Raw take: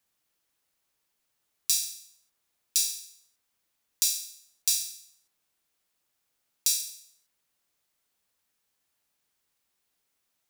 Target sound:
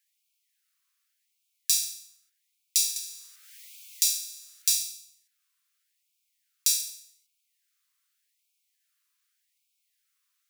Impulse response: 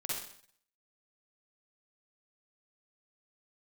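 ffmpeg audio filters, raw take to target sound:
-filter_complex "[0:a]asettb=1/sr,asplit=3[s0][s1][s2];[s0]atrim=end=2.964[s3];[s1]atrim=start=2.96:end=4.78,asetpts=PTS-STARTPTS,afade=t=in:d=0.004:c=qsin,afade=t=out:st=1.816:d=0.004:c=qsin,acompressor=mode=upward:threshold=0.0447:ratio=2.5[s4];[s2]atrim=start=4.776[s5];[s3][s4]acrossfade=d=0.004:c1=hsin:c2=qsin[s6];[s6][s5]acrossfade=d=0.004:c1=qsin:c2=hsin,afftfilt=real='re*gte(b*sr/1024,970*pow(2200/970,0.5+0.5*sin(2*PI*0.85*pts/sr)))':imag='im*gte(b*sr/1024,970*pow(2200/970,0.5+0.5*sin(2*PI*0.85*pts/sr)))':win_size=1024:overlap=0.75,volume=1.19"

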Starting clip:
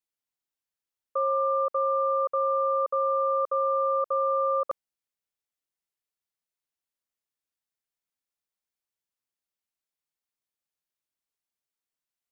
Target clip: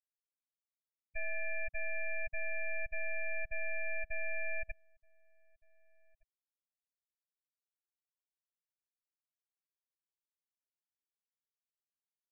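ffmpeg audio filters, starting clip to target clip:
-filter_complex "[0:a]aderivative,aeval=exprs='abs(val(0))':c=same,afftfilt=real='re*gte(hypot(re,im),0.0141)':imag='im*gte(hypot(re,im),0.0141)':win_size=1024:overlap=0.75,asplit=2[s0][s1];[s1]adelay=1516,volume=0.0398,highshelf=f=4000:g=-34.1[s2];[s0][s2]amix=inputs=2:normalize=0,volume=2.82"

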